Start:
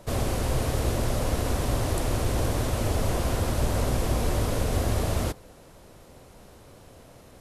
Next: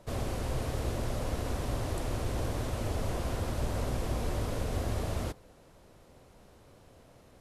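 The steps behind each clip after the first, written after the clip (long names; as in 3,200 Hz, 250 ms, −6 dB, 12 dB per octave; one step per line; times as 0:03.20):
high-shelf EQ 7,300 Hz −5.5 dB
level −7 dB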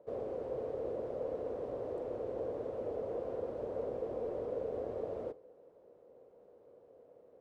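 resonant band-pass 480 Hz, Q 4.7
on a send at −20.5 dB: convolution reverb RT60 0.30 s, pre-delay 31 ms
on the sum: level +6 dB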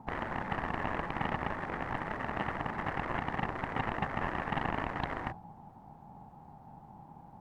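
harmonic generator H 3 −18 dB, 7 −11 dB, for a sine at −26 dBFS
ring modulation 330 Hz
level +8.5 dB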